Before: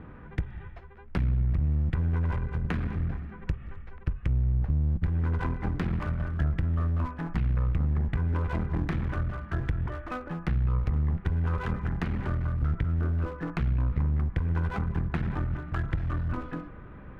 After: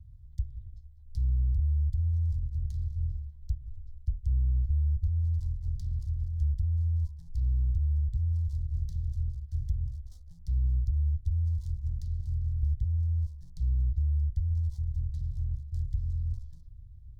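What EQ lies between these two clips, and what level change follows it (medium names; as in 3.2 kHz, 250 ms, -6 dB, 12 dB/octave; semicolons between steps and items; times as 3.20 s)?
inverse Chebyshev band-stop 200–2700 Hz, stop band 40 dB; 0.0 dB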